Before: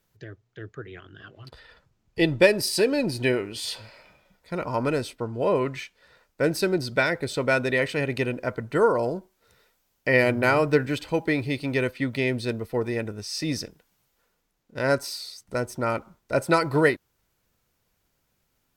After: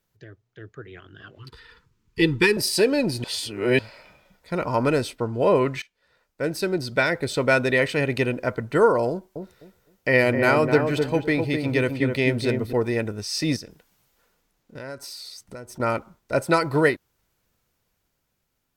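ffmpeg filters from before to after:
ffmpeg -i in.wav -filter_complex "[0:a]asettb=1/sr,asplit=3[link_01][link_02][link_03];[link_01]atrim=end=1.384[link_04];[link_02]atrim=start=1.38:end=2.57,asetpts=PTS-STARTPTS,afade=type=in:duration=0.004:curve=qsin,afade=type=out:start_time=1.186:duration=0.004:curve=qsin,asuperstop=centerf=650:order=20:qfactor=1.8[link_05];[link_03]atrim=start=2.566[link_06];[link_04][link_05]acrossfade=duration=0.004:curve1=hsin:curve2=qsin[link_07];[link_07][link_06]acrossfade=duration=0.004:curve1=qsin:curve2=hsin,asettb=1/sr,asplit=3[link_08][link_09][link_10];[link_08]atrim=end=9.104[link_11];[link_09]atrim=start=9.1:end=12.73,asetpts=PTS-STARTPTS,afade=type=in:duration=0.004:curve=qsin,afade=type=out:start_time=3.626:duration=0.004:curve=qsin,asplit=2[link_12][link_13];[link_13]adelay=256,lowpass=frequency=960:poles=1,volume=-4dB,asplit=2[link_14][link_15];[link_15]adelay=256,lowpass=frequency=960:poles=1,volume=0.23,asplit=2[link_16][link_17];[link_17]adelay=256,lowpass=frequency=960:poles=1,volume=0.23[link_18];[link_12][link_14][link_16][link_18]amix=inputs=4:normalize=0,atrim=end_sample=160083[link_19];[link_10]atrim=start=12.726[link_20];[link_11][link_19]acrossfade=duration=0.004:curve1=hsin:curve2=qsin[link_21];[link_21][link_20]acrossfade=duration=0.004:curve1=qsin:curve2=hsin,asettb=1/sr,asplit=3[link_22][link_23][link_24];[link_22]atrim=end=13.564[link_25];[link_23]atrim=start=13.56:end=15.8,asetpts=PTS-STARTPTS,afade=type=in:duration=0.004:curve=qsin,afade=type=out:start_time=2.236:duration=0.004:curve=qsin,acompressor=threshold=-40dB:ratio=4:attack=3.2:release=140:knee=1:detection=peak[link_26];[link_24]atrim=start=15.796[link_27];[link_25][link_26]acrossfade=duration=0.004:curve1=hsin:curve2=qsin[link_28];[link_28][link_27]acrossfade=duration=0.004:curve1=qsin:curve2=hsin,asplit=4[link_29][link_30][link_31][link_32];[link_29]atrim=end=3.242[link_33];[link_30]atrim=start=3.238:end=3.792,asetpts=PTS-STARTPTS,areverse[link_34];[link_31]atrim=start=3.788:end=5.82,asetpts=PTS-STARTPTS,afade=type=out:start_time=2.028:duration=0.004:curve=hsin:silence=0.1[link_35];[link_32]atrim=start=5.82,asetpts=PTS-STARTPTS,afade=type=in:duration=1.52:silence=0.1[link_36];[link_33][link_34]acrossfade=duration=0.004:curve1=hsin:curve2=hsin[link_37];[link_35][link_36]concat=n=2:v=0:a=1[link_38];[link_37][link_38]acrossfade=duration=0.004:curve1=hsin:curve2=hsin,dynaudnorm=framelen=170:gausssize=13:maxgain=8dB,volume=-3.5dB" out.wav

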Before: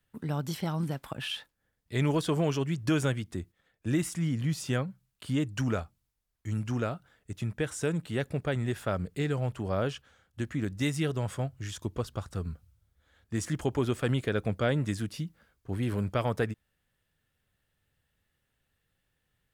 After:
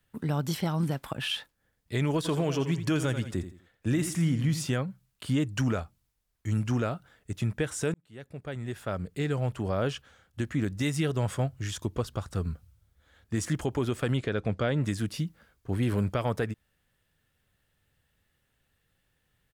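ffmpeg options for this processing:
ffmpeg -i in.wav -filter_complex "[0:a]asplit=3[link_01][link_02][link_03];[link_01]afade=type=out:start_time=2.24:duration=0.02[link_04];[link_02]aecho=1:1:84|168|252:0.266|0.0772|0.0224,afade=type=in:start_time=2.24:duration=0.02,afade=type=out:start_time=4.65:duration=0.02[link_05];[link_03]afade=type=in:start_time=4.65:duration=0.02[link_06];[link_04][link_05][link_06]amix=inputs=3:normalize=0,asettb=1/sr,asplit=3[link_07][link_08][link_09];[link_07]atrim=end=14.174[link_10];[link_08]atrim=start=14.17:end=14.84,asetpts=PTS-STARTPTS,afade=type=in:duration=0.004:curve=qsin,afade=type=out:start_time=0.666:duration=0.004:curve=qsin,lowpass=6300[link_11];[link_09]atrim=start=14.836[link_12];[link_10][link_11]acrossfade=duration=0.004:curve1=hsin:curve2=qsin[link_13];[link_13][link_12]acrossfade=duration=0.004:curve1=qsin:curve2=hsin,asplit=2[link_14][link_15];[link_14]atrim=end=7.94,asetpts=PTS-STARTPTS,afade=type=out:start_time=7.936:duration=0.004:curve=hsin[link_16];[link_15]atrim=start=7.94,asetpts=PTS-STARTPTS,afade=type=in:duration=1.98[link_17];[link_16][link_17]concat=n=2:v=0:a=1,alimiter=limit=-22.5dB:level=0:latency=1:release=197,volume=4dB" out.wav

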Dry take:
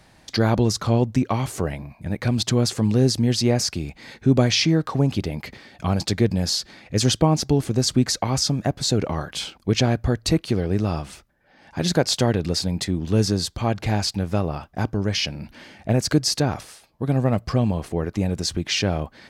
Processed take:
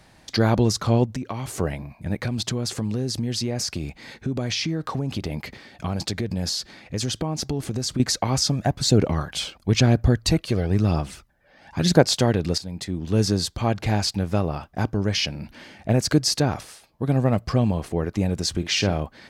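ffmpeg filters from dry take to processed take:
ffmpeg -i in.wav -filter_complex "[0:a]asplit=3[link_01][link_02][link_03];[link_01]afade=type=out:start_time=1.05:duration=0.02[link_04];[link_02]acompressor=threshold=-26dB:ratio=5:attack=3.2:release=140:knee=1:detection=peak,afade=type=in:start_time=1.05:duration=0.02,afade=type=out:start_time=1.56:duration=0.02[link_05];[link_03]afade=type=in:start_time=1.56:duration=0.02[link_06];[link_04][link_05][link_06]amix=inputs=3:normalize=0,asettb=1/sr,asplit=3[link_07][link_08][link_09];[link_07]atrim=end=2.224[link_10];[link_08]atrim=start=2.22:end=8,asetpts=PTS-STARTPTS,afade=type=in:duration=0.004:curve=qsin,afade=type=out:start_time=5.776:duration=0.004:curve=qsin,acompressor=threshold=-22dB:ratio=6:attack=3.2:release=140:knee=1:detection=peak[link_11];[link_09]atrim=start=7.996[link_12];[link_10][link_11]acrossfade=duration=0.004:curve1=hsin:curve2=qsin[link_13];[link_13][link_12]acrossfade=duration=0.004:curve1=qsin:curve2=hsin,asplit=3[link_14][link_15][link_16];[link_14]afade=type=out:start_time=8.51:duration=0.02[link_17];[link_15]aphaser=in_gain=1:out_gain=1:delay=1.9:decay=0.41:speed=1:type=triangular,afade=type=in:start_time=8.51:duration=0.02,afade=type=out:start_time=12.05:duration=0.02[link_18];[link_16]afade=type=in:start_time=12.05:duration=0.02[link_19];[link_17][link_18][link_19]amix=inputs=3:normalize=0,asettb=1/sr,asplit=3[link_20][link_21][link_22];[link_20]atrim=end=18.504[link_23];[link_21]atrim=start=18.5:end=18.94,asetpts=PTS-STARTPTS,afade=type=in:duration=0.004:curve=qsin,afade=type=out:start_time=0.436:duration=0.004:curve=qsin,asplit=2[link_24][link_25];[link_25]adelay=49,volume=-12dB[link_26];[link_24][link_26]amix=inputs=2:normalize=0,atrim=end_sample=19404[link_27];[link_22]atrim=start=18.936[link_28];[link_23][link_27]acrossfade=duration=0.004:curve1=hsin:curve2=qsin[link_29];[link_29][link_28]acrossfade=duration=0.004:curve1=qsin:curve2=hsin,asplit=2[link_30][link_31];[link_30]atrim=end=12.58,asetpts=PTS-STARTPTS,afade=type=out:start_time=12.576:duration=0.004:curve=hsin:silence=0.237137[link_32];[link_31]atrim=start=12.58,asetpts=PTS-STARTPTS,afade=type=in:duration=0.72:silence=0.237137[link_33];[link_32][link_33]concat=n=2:v=0:a=1" out.wav

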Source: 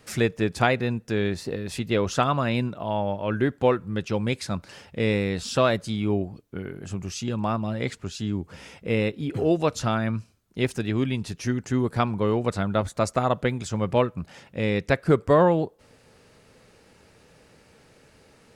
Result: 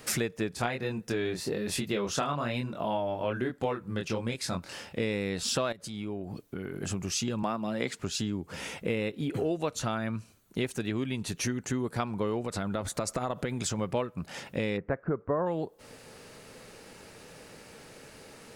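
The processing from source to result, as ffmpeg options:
ffmpeg -i in.wav -filter_complex "[0:a]asplit=3[link_01][link_02][link_03];[link_01]afade=type=out:start_time=0.52:duration=0.02[link_04];[link_02]flanger=delay=22.5:depth=5:speed=1.1,afade=type=in:start_time=0.52:duration=0.02,afade=type=out:start_time=5.01:duration=0.02[link_05];[link_03]afade=type=in:start_time=5.01:duration=0.02[link_06];[link_04][link_05][link_06]amix=inputs=3:normalize=0,asettb=1/sr,asplit=3[link_07][link_08][link_09];[link_07]atrim=end=5.724[link_10];[link_08]atrim=start=5.72:end=6.82,asetpts=PTS-STARTPTS,afade=type=in:duration=0.004:curve=qsin,afade=type=out:start_time=1.096:duration=0.004:curve=qsin,acompressor=threshold=-36dB:ratio=12:attack=3.2:release=140:knee=1:detection=peak[link_11];[link_09]atrim=start=6.816[link_12];[link_10][link_11]acrossfade=duration=0.004:curve1=hsin:curve2=qsin[link_13];[link_13][link_12]acrossfade=duration=0.004:curve1=qsin:curve2=hsin,asettb=1/sr,asplit=3[link_14][link_15][link_16];[link_14]atrim=end=7.434[link_17];[link_15]atrim=start=7.43:end=7.98,asetpts=PTS-STARTPTS,afade=type=in:duration=0.004:curve=qsin,afade=type=out:start_time=0.546:duration=0.004:curve=qsin,highpass=frequency=140:width=0.5412,highpass=frequency=140:width=1.3066[link_18];[link_16]atrim=start=7.976[link_19];[link_17][link_18]acrossfade=duration=0.004:curve1=hsin:curve2=qsin[link_20];[link_20][link_19]acrossfade=duration=0.004:curve1=qsin:curve2=hsin,asettb=1/sr,asplit=3[link_21][link_22][link_23];[link_21]atrim=end=8.604[link_24];[link_22]atrim=start=8.6:end=11.9,asetpts=PTS-STARTPTS,afade=type=in:duration=0.004:curve=qsin,afade=type=out:start_time=3.296:duration=0.004:curve=qsin,bandreject=frequency=5100:width=10[link_25];[link_23]atrim=start=11.896[link_26];[link_24][link_25]acrossfade=duration=0.004:curve1=hsin:curve2=qsin[link_27];[link_27][link_26]acrossfade=duration=0.004:curve1=qsin:curve2=hsin,asettb=1/sr,asplit=3[link_28][link_29][link_30];[link_28]atrim=end=12.414[link_31];[link_29]atrim=start=12.41:end=13.79,asetpts=PTS-STARTPTS,afade=type=in:duration=0.004:curve=qsin,afade=type=out:start_time=1.376:duration=0.004:curve=qsin,acompressor=threshold=-26dB:ratio=6:attack=3.2:release=140:knee=1:detection=peak[link_32];[link_30]atrim=start=13.786[link_33];[link_31][link_32]acrossfade=duration=0.004:curve1=hsin:curve2=qsin[link_34];[link_34][link_33]acrossfade=duration=0.004:curve1=qsin:curve2=hsin,asplit=3[link_35][link_36][link_37];[link_35]afade=type=out:start_time=14.76:duration=0.02[link_38];[link_36]lowpass=frequency=1600:width=0.5412,lowpass=frequency=1600:width=1.3066,afade=type=in:start_time=14.76:duration=0.02,afade=type=out:start_time=15.45:duration=0.02[link_39];[link_37]afade=type=in:start_time=15.45:duration=0.02[link_40];[link_38][link_39][link_40]amix=inputs=3:normalize=0,highshelf=frequency=9200:gain=7,acompressor=threshold=-33dB:ratio=6,equalizer=frequency=64:width=0.65:gain=-7,volume=6dB" out.wav

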